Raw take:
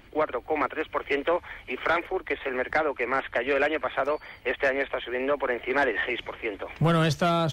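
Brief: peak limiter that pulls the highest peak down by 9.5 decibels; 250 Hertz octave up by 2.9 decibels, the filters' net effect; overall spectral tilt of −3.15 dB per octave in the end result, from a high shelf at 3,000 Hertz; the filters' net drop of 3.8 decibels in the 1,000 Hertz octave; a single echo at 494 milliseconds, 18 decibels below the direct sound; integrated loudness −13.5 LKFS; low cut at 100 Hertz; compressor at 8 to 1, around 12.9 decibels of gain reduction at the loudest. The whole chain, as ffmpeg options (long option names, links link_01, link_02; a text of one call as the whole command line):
ffmpeg -i in.wav -af "highpass=100,equalizer=frequency=250:width_type=o:gain=5.5,equalizer=frequency=1000:width_type=o:gain=-7.5,highshelf=frequency=3000:gain=9,acompressor=threshold=-32dB:ratio=8,alimiter=level_in=6dB:limit=-24dB:level=0:latency=1,volume=-6dB,aecho=1:1:494:0.126,volume=25.5dB" out.wav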